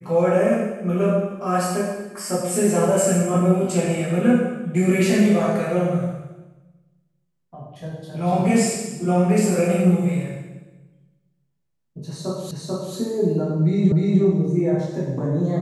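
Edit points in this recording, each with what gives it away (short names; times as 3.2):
12.51 repeat of the last 0.44 s
13.92 repeat of the last 0.3 s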